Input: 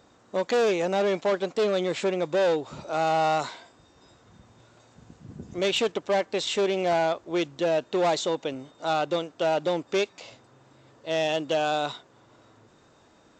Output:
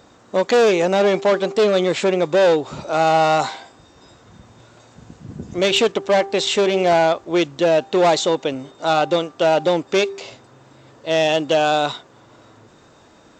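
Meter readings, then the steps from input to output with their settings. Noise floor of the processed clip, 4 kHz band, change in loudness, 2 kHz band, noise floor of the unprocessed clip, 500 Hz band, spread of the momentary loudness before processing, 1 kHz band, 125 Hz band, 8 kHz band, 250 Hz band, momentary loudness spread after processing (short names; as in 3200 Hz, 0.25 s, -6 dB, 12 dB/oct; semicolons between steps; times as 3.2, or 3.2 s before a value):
-50 dBFS, +8.5 dB, +8.5 dB, +8.5 dB, -59 dBFS, +8.5 dB, 8 LU, +8.0 dB, +8.5 dB, +8.5 dB, +8.5 dB, 9 LU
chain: de-hum 393.6 Hz, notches 3; gain +8.5 dB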